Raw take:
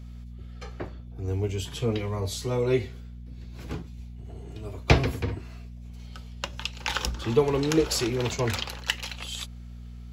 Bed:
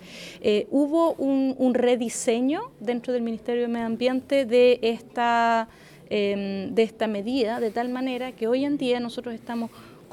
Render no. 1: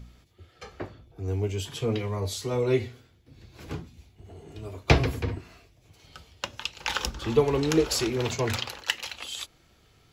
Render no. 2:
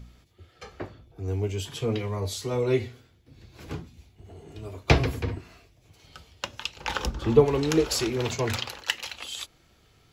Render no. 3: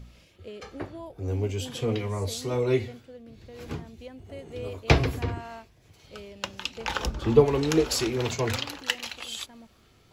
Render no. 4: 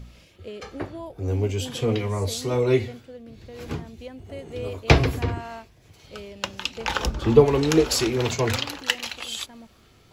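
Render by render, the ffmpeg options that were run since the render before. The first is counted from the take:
-af "bandreject=f=60:t=h:w=4,bandreject=f=120:t=h:w=4,bandreject=f=180:t=h:w=4,bandreject=f=240:t=h:w=4"
-filter_complex "[0:a]asettb=1/sr,asplit=3[a][b][c];[a]atrim=end=6.764[d];[b]atrim=start=6.76:end=7.46,asetpts=PTS-STARTPTS,afade=t=in:d=0.004:c=qsin,afade=t=out:st=0.696:d=0.004:c=qsin,tiltshelf=f=1.3k:g=5[e];[c]atrim=start=7.456[f];[d][e]acrossfade=d=0.004:c1=hsin:c2=qsin[g];[g][f]acrossfade=d=0.004:c1=qsin:c2=hsin"
-filter_complex "[1:a]volume=-20.5dB[a];[0:a][a]amix=inputs=2:normalize=0"
-af "volume=4dB,alimiter=limit=-2dB:level=0:latency=1"

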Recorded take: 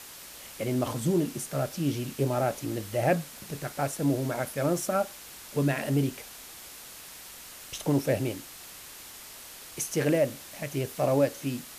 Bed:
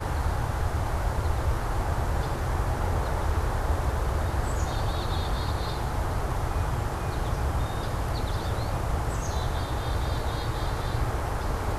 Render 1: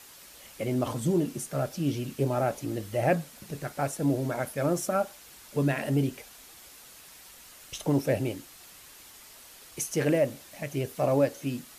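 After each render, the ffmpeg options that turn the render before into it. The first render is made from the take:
-af "afftdn=nr=6:nf=-46"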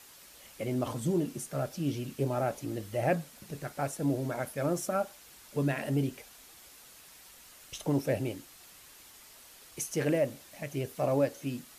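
-af "volume=-3.5dB"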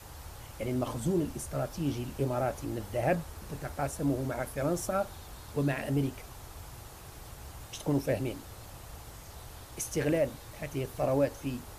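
-filter_complex "[1:a]volume=-19.5dB[a];[0:a][a]amix=inputs=2:normalize=0"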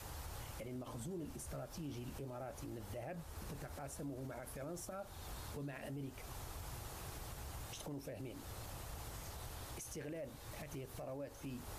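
-af "acompressor=threshold=-43dB:ratio=2.5,alimiter=level_in=14dB:limit=-24dB:level=0:latency=1:release=70,volume=-14dB"

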